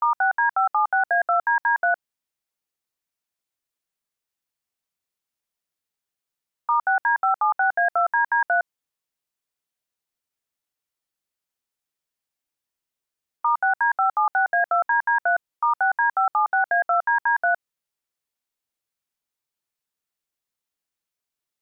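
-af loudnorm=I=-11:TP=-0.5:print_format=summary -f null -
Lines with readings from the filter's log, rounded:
Input Integrated:    -21.4 LUFS
Input True Peak:     -13.3 dBTP
Input LRA:             6.3 LU
Input Threshold:     -31.5 LUFS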